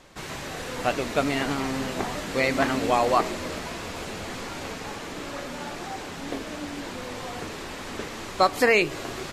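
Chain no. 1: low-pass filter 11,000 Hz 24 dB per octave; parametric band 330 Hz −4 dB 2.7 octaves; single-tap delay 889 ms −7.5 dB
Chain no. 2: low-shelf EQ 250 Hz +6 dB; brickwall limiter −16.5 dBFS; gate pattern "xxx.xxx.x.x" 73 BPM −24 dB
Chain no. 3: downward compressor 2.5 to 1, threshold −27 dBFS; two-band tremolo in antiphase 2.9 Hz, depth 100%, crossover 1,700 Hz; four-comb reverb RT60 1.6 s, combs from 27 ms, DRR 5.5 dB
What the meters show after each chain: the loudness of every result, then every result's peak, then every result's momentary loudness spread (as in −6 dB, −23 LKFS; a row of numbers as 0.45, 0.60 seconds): −29.0, −31.5, −35.5 LKFS; −8.0, −16.5, −16.0 dBFS; 12, 9, 7 LU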